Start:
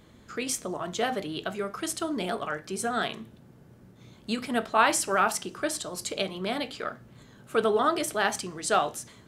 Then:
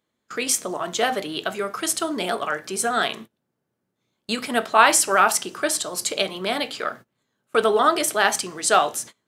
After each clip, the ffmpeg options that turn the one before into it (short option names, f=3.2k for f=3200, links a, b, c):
-af "highpass=f=400:p=1,agate=range=-26dB:threshold=-45dB:ratio=16:detection=peak,highshelf=f=7.9k:g=4,volume=7.5dB"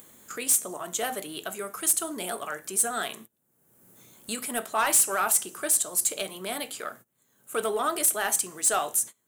-af "acompressor=mode=upward:threshold=-28dB:ratio=2.5,aexciter=amount=7.7:drive=3.2:freq=6.9k,asoftclip=type=tanh:threshold=-7.5dB,volume=-8.5dB"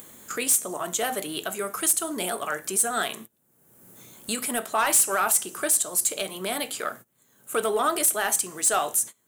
-af "alimiter=limit=-20.5dB:level=0:latency=1:release=262,volume=5.5dB"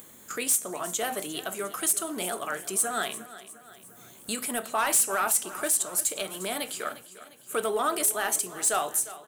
-af "aecho=1:1:353|706|1059|1412|1765:0.158|0.0824|0.0429|0.0223|0.0116,volume=-3dB"